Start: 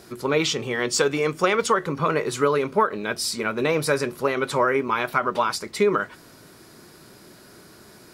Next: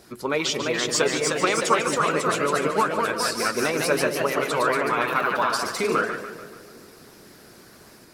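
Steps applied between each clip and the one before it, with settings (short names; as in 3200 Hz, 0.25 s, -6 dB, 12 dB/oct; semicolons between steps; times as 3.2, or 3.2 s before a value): echoes that change speed 0.363 s, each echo +1 st, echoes 3; harmonic-percussive split harmonic -8 dB; split-band echo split 750 Hz, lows 0.205 s, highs 0.145 s, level -10.5 dB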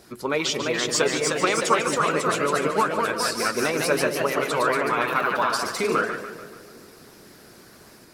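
nothing audible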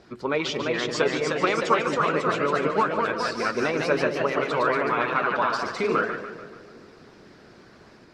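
air absorption 160 m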